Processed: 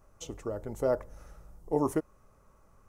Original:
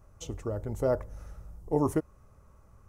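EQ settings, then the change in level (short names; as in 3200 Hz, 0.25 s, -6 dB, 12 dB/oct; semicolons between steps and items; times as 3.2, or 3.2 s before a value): bell 79 Hz -10.5 dB 1.8 oct; 0.0 dB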